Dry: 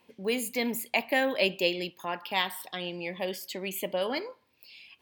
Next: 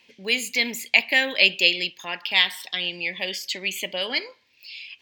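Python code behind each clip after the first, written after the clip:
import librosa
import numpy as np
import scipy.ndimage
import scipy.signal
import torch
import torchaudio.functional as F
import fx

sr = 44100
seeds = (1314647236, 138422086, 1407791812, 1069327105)

y = fx.band_shelf(x, sr, hz=3600.0, db=14.0, octaves=2.3)
y = y * 10.0 ** (-2.0 / 20.0)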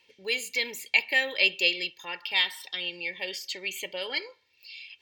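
y = x + 0.62 * np.pad(x, (int(2.2 * sr / 1000.0), 0))[:len(x)]
y = y * 10.0 ** (-7.0 / 20.0)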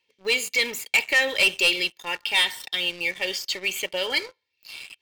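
y = fx.leveller(x, sr, passes=3)
y = y * 10.0 ** (-4.0 / 20.0)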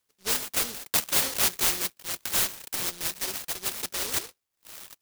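y = fx.noise_mod_delay(x, sr, seeds[0], noise_hz=4600.0, depth_ms=0.49)
y = y * 10.0 ** (-4.0 / 20.0)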